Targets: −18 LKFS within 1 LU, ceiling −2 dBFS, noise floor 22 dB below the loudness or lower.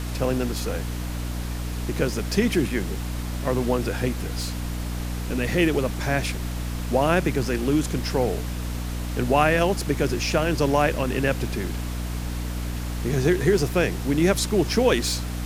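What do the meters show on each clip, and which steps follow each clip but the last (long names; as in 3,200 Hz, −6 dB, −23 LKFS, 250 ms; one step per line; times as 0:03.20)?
mains hum 60 Hz; hum harmonics up to 300 Hz; level of the hum −27 dBFS; background noise floor −30 dBFS; target noise floor −47 dBFS; integrated loudness −24.5 LKFS; sample peak −5.5 dBFS; target loudness −18.0 LKFS
→ mains-hum notches 60/120/180/240/300 Hz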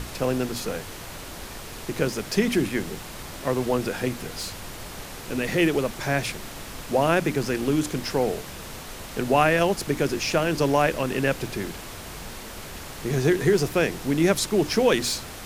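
mains hum none found; background noise floor −39 dBFS; target noise floor −47 dBFS
→ noise reduction from a noise print 8 dB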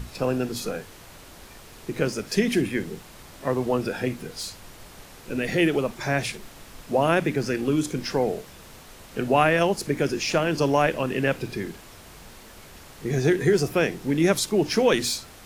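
background noise floor −47 dBFS; integrated loudness −24.5 LKFS; sample peak −6.0 dBFS; target loudness −18.0 LKFS
→ level +6.5 dB
brickwall limiter −2 dBFS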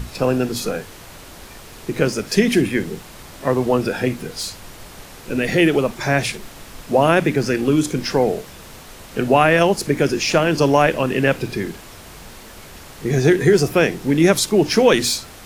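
integrated loudness −18.0 LKFS; sample peak −2.0 dBFS; background noise floor −40 dBFS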